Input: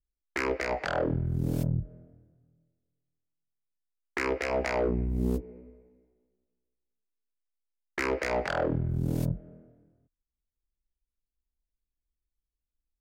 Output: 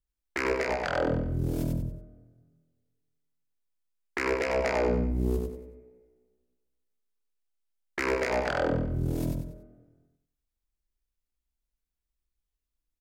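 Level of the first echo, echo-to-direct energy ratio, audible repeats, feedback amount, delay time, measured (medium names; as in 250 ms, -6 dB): -4.0 dB, -3.5 dB, 4, 34%, 94 ms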